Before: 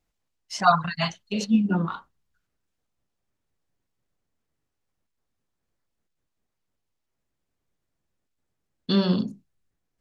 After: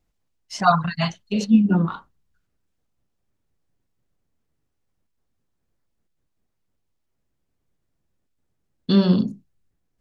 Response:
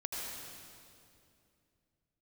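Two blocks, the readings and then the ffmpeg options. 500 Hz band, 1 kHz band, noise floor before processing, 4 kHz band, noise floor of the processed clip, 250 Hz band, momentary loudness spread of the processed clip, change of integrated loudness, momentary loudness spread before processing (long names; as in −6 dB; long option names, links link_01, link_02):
+2.5 dB, +1.5 dB, −81 dBFS, 0.0 dB, −75 dBFS, +5.5 dB, 16 LU, +4.0 dB, 15 LU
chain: -af "lowshelf=frequency=450:gain=6.5"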